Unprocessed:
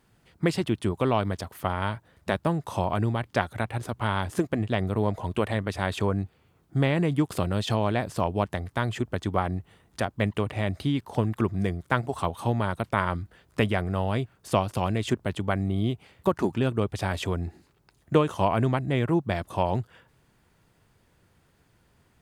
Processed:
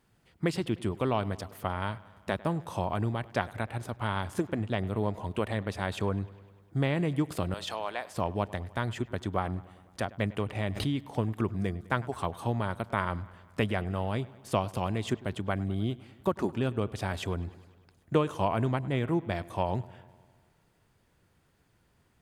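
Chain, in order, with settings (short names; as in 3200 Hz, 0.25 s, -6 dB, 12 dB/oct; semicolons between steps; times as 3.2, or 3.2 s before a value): 7.54–8.14 HPF 650 Hz 12 dB/oct; on a send: dark delay 0.101 s, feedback 66%, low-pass 4000 Hz, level -20.5 dB; 10.55–11.02 on the sum: backwards sustainer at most 78 dB/s; gain -4.5 dB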